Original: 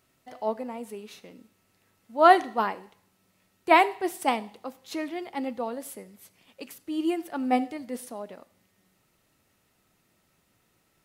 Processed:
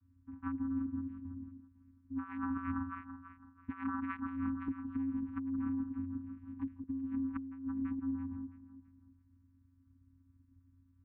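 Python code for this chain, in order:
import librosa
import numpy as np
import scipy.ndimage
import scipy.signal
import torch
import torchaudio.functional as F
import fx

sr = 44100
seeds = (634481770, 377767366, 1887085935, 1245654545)

y = fx.wiener(x, sr, points=41)
y = fx.echo_alternate(y, sr, ms=166, hz=910.0, feedback_pct=56, wet_db=-10.0)
y = 10.0 ** (-9.0 / 20.0) * np.tanh(y / 10.0 ** (-9.0 / 20.0))
y = fx.vocoder(y, sr, bands=8, carrier='square', carrier_hz=89.3)
y = scipy.signal.sosfilt(scipy.signal.cheby1(4, 1.0, [280.0, 1100.0], 'bandstop', fs=sr, output='sos'), y)
y = fx.peak_eq(y, sr, hz=770.0, db=12.5, octaves=1.3)
y = fx.over_compress(y, sr, threshold_db=-35.0, ratio=-1.0)
y = scipy.signal.sosfilt(scipy.signal.butter(4, 2300.0, 'lowpass', fs=sr, output='sos'), y)
y = fx.low_shelf(y, sr, hz=130.0, db=12.0)
y = fx.band_squash(y, sr, depth_pct=70, at=(4.68, 6.84))
y = y * 10.0 ** (-5.0 / 20.0)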